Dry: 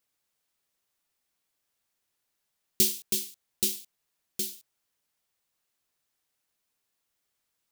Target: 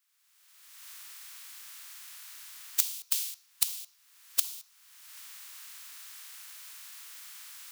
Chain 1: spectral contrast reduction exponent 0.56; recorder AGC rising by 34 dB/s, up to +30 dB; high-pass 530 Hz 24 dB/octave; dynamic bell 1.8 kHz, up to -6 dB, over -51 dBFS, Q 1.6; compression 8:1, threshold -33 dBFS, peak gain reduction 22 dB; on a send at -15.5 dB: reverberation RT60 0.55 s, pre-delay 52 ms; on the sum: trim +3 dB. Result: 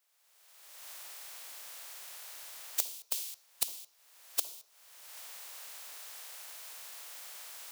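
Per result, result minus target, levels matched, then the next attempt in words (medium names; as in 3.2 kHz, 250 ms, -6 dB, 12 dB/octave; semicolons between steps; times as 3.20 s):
500 Hz band +19.0 dB; compression: peak gain reduction +6 dB
spectral contrast reduction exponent 0.56; recorder AGC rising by 34 dB/s, up to +30 dB; high-pass 1.1 kHz 24 dB/octave; dynamic bell 1.8 kHz, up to -6 dB, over -51 dBFS, Q 1.6; compression 8:1, threshold -33 dBFS, peak gain reduction 22 dB; on a send at -15.5 dB: reverberation RT60 0.55 s, pre-delay 52 ms; on the sum: trim +3 dB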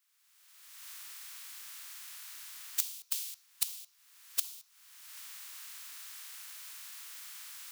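compression: peak gain reduction +5.5 dB
spectral contrast reduction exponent 0.56; recorder AGC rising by 34 dB/s, up to +30 dB; high-pass 1.1 kHz 24 dB/octave; dynamic bell 1.8 kHz, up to -6 dB, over -51 dBFS, Q 1.6; compression 8:1, threshold -26.5 dBFS, peak gain reduction 16.5 dB; on a send at -15.5 dB: reverberation RT60 0.55 s, pre-delay 52 ms; on the sum: trim +3 dB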